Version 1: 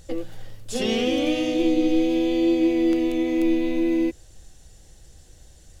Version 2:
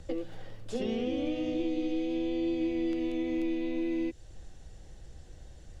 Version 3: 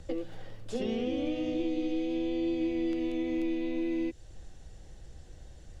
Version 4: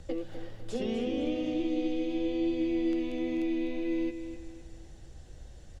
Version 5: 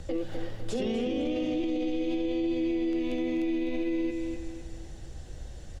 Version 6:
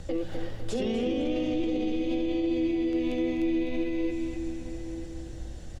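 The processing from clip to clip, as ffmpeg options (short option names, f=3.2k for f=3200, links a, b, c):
-filter_complex "[0:a]aemphasis=mode=reproduction:type=75fm,acrossover=split=180|710|2200[a][b][c][d];[a]acompressor=threshold=-39dB:ratio=4[e];[b]acompressor=threshold=-33dB:ratio=4[f];[c]acompressor=threshold=-54dB:ratio=4[g];[d]acompressor=threshold=-50dB:ratio=4[h];[e][f][g][h]amix=inputs=4:normalize=0"
-af anull
-af "aecho=1:1:253|506|759|1012:0.316|0.126|0.0506|0.0202"
-af "alimiter=level_in=5dB:limit=-24dB:level=0:latency=1:release=22,volume=-5dB,volume=6.5dB"
-filter_complex "[0:a]aeval=exprs='val(0)+0.00316*(sin(2*PI*60*n/s)+sin(2*PI*2*60*n/s)/2+sin(2*PI*3*60*n/s)/3+sin(2*PI*4*60*n/s)/4+sin(2*PI*5*60*n/s)/5)':c=same,asplit=2[a][b];[b]adelay=932.9,volume=-10dB,highshelf=f=4k:g=-21[c];[a][c]amix=inputs=2:normalize=0,volume=1dB"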